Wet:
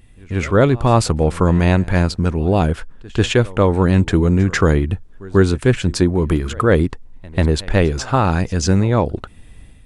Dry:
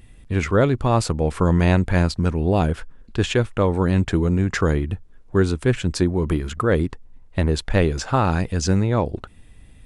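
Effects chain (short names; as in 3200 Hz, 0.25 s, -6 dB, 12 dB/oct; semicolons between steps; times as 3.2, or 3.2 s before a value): pre-echo 0.142 s -22 dB; AGC; gain -1 dB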